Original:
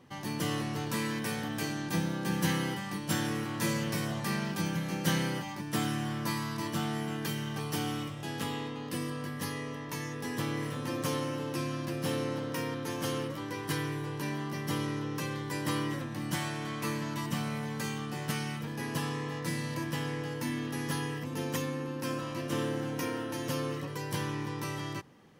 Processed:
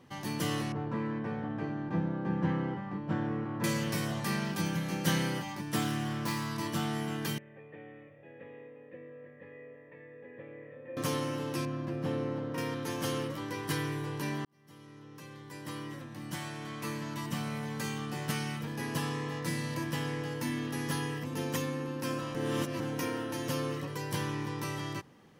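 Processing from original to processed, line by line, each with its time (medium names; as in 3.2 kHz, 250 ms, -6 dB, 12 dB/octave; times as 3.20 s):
0.72–3.64 s: low-pass 1.2 kHz
5.81–6.50 s: self-modulated delay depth 0.093 ms
7.38–10.97 s: cascade formant filter e
11.65–12.58 s: low-pass 1.1 kHz 6 dB/octave
14.45–18.11 s: fade in
22.35–22.80 s: reverse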